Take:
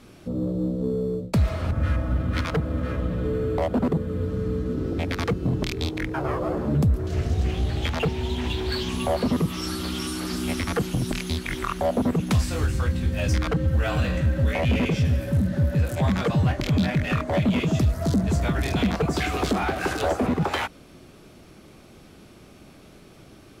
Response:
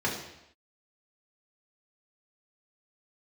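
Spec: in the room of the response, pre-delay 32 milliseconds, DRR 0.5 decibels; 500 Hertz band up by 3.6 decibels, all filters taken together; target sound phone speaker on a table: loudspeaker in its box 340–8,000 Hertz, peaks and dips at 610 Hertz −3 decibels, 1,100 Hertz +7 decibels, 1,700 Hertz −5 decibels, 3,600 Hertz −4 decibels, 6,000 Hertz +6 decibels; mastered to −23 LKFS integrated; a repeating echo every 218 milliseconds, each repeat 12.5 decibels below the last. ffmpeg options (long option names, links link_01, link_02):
-filter_complex "[0:a]equalizer=frequency=500:width_type=o:gain=6,aecho=1:1:218|436|654:0.237|0.0569|0.0137,asplit=2[link_01][link_02];[1:a]atrim=start_sample=2205,adelay=32[link_03];[link_02][link_03]afir=irnorm=-1:irlink=0,volume=-10.5dB[link_04];[link_01][link_04]amix=inputs=2:normalize=0,highpass=frequency=340:width=0.5412,highpass=frequency=340:width=1.3066,equalizer=frequency=610:width_type=q:width=4:gain=-3,equalizer=frequency=1100:width_type=q:width=4:gain=7,equalizer=frequency=1700:width_type=q:width=4:gain=-5,equalizer=frequency=3600:width_type=q:width=4:gain=-4,equalizer=frequency=6000:width_type=q:width=4:gain=6,lowpass=frequency=8000:width=0.5412,lowpass=frequency=8000:width=1.3066,volume=1dB"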